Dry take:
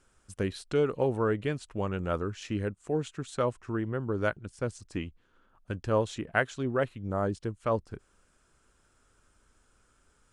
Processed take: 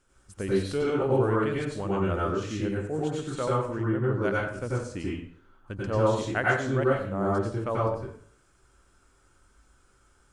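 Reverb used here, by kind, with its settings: plate-style reverb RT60 0.56 s, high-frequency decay 0.75×, pre-delay 80 ms, DRR -5.5 dB; trim -3 dB

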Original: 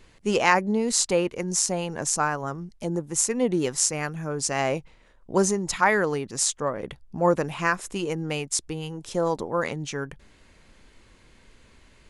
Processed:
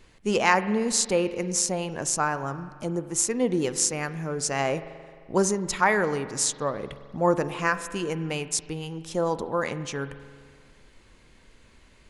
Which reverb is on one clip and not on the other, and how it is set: spring tank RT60 1.9 s, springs 43 ms, chirp 30 ms, DRR 12.5 dB; trim -1 dB

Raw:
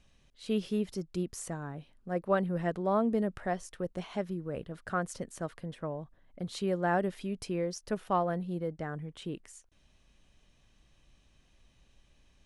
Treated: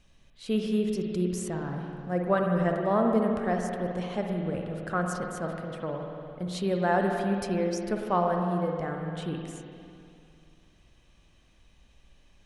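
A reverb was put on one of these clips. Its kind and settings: spring tank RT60 2.6 s, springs 50/56 ms, chirp 40 ms, DRR 1.5 dB; trim +2.5 dB

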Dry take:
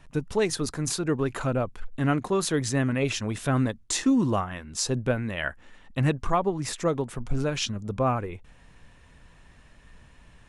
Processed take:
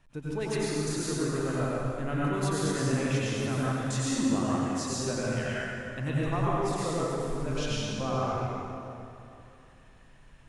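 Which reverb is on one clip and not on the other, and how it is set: plate-style reverb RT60 2.8 s, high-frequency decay 0.7×, pre-delay 80 ms, DRR -7.5 dB; trim -11 dB

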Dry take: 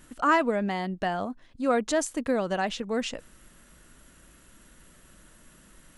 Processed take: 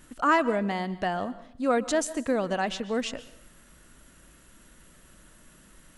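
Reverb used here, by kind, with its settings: plate-style reverb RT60 0.59 s, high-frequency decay 0.95×, pre-delay 115 ms, DRR 16.5 dB

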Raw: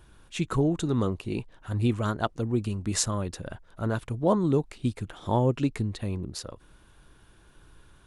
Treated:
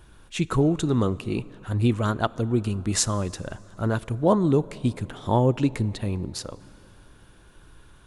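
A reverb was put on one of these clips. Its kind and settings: plate-style reverb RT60 3.7 s, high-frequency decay 0.6×, DRR 19.5 dB; trim +3.5 dB

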